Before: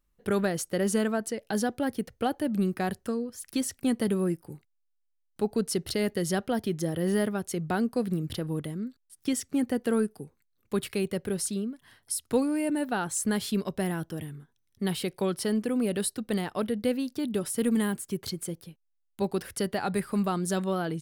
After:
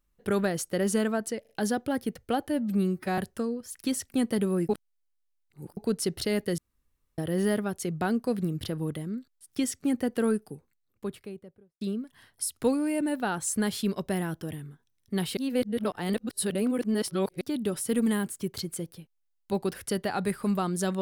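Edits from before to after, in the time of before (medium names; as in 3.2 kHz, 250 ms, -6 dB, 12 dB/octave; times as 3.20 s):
1.41 s: stutter 0.04 s, 3 plays
2.41–2.87 s: stretch 1.5×
4.38–5.46 s: reverse
6.27–6.87 s: room tone
10.06–11.50 s: studio fade out
15.06–17.10 s: reverse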